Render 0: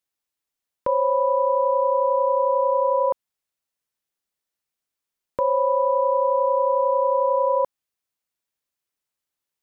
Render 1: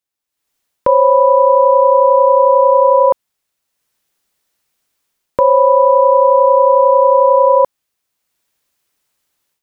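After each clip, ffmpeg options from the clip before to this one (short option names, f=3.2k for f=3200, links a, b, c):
-af "dynaudnorm=f=280:g=3:m=16dB"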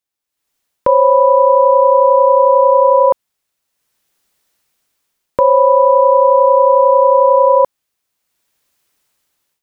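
-af "dynaudnorm=f=250:g=7:m=5.5dB"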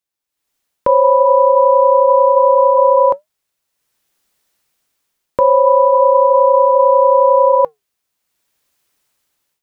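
-af "flanger=delay=1.9:depth=6:regen=-87:speed=0.28:shape=sinusoidal,volume=3.5dB"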